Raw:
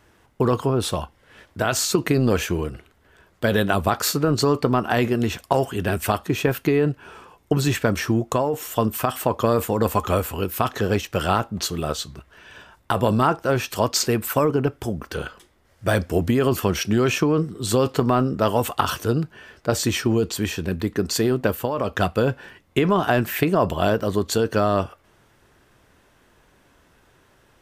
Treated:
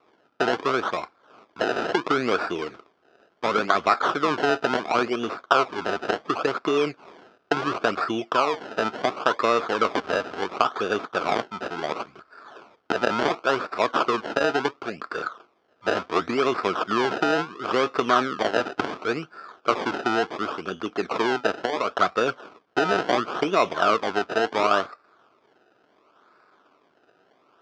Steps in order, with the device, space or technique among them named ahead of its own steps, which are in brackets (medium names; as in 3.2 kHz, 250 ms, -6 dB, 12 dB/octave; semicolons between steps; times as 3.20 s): circuit-bent sampling toy (decimation with a swept rate 27×, swing 100% 0.71 Hz; cabinet simulation 460–4400 Hz, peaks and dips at 540 Hz -5 dB, 870 Hz -5 dB, 1.3 kHz +8 dB, 1.9 kHz -9 dB, 2.8 kHz -4 dB, 4 kHz -7 dB); trim +3 dB